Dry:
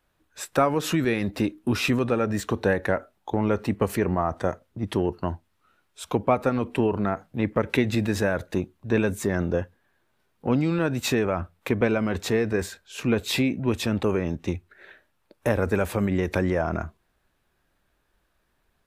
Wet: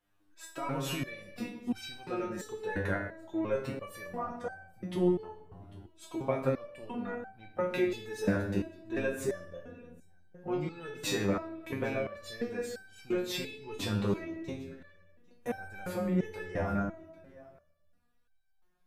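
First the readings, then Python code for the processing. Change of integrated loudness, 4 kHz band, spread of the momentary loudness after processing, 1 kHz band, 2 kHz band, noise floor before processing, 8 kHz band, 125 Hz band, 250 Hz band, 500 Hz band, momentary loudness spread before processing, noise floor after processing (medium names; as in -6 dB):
-9.5 dB, -8.5 dB, 16 LU, -10.5 dB, -9.5 dB, -71 dBFS, -9.0 dB, -10.5 dB, -9.5 dB, -9.0 dB, 8 LU, -68 dBFS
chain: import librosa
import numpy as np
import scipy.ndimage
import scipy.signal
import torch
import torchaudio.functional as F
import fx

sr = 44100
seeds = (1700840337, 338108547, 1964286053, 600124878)

y = x + 10.0 ** (-23.0 / 20.0) * np.pad(x, (int(798 * sr / 1000.0), 0))[:len(x)]
y = fx.room_shoebox(y, sr, seeds[0], volume_m3=670.0, walls='mixed', distance_m=0.85)
y = fx.resonator_held(y, sr, hz=2.9, low_hz=100.0, high_hz=780.0)
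y = F.gain(torch.from_numpy(y), 2.0).numpy()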